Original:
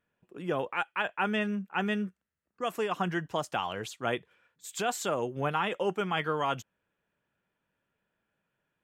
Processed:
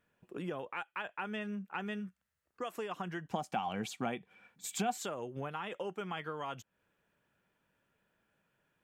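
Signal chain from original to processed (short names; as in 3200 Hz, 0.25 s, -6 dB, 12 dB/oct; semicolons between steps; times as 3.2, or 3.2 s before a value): 1.99–2.75 bell 510 Hz -> 130 Hz -11.5 dB 0.97 oct; compressor 6:1, threshold -41 dBFS, peak gain reduction 15.5 dB; 3.31–4.98 small resonant body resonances 210/760/2300 Hz, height 13 dB; gain +3.5 dB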